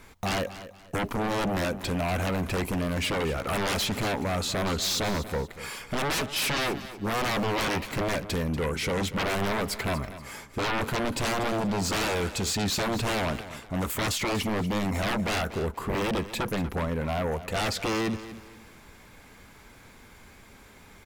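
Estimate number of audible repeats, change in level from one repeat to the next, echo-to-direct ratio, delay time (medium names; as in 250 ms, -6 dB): 3, -10.5 dB, -13.5 dB, 239 ms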